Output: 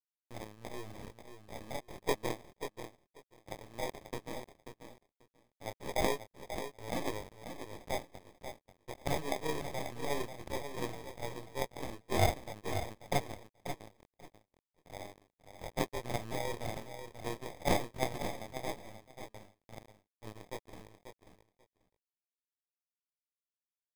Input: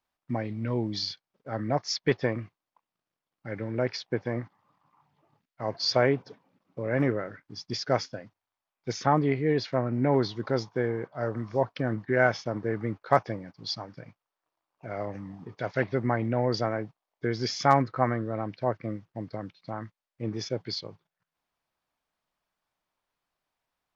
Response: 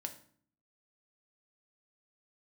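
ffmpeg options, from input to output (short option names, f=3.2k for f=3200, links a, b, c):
-filter_complex "[0:a]aeval=exprs='if(lt(val(0),0),0.447*val(0),val(0))':c=same,equalizer=f=125:t=o:w=1:g=-10,equalizer=f=250:t=o:w=1:g=-9,equalizer=f=1k:t=o:w=1:g=-9,equalizer=f=2k:t=o:w=1:g=12,equalizer=f=4k:t=o:w=1:g=-7,aresample=11025,aeval=exprs='sgn(val(0))*max(abs(val(0))-0.00944,0)':c=same,aresample=44100,flanger=delay=18.5:depth=7.7:speed=0.15,acrusher=samples=31:mix=1:aa=0.000001,asplit=2[a][b];[b]aecho=0:1:538|1076:0.355|0.0532[c];[a][c]amix=inputs=2:normalize=0"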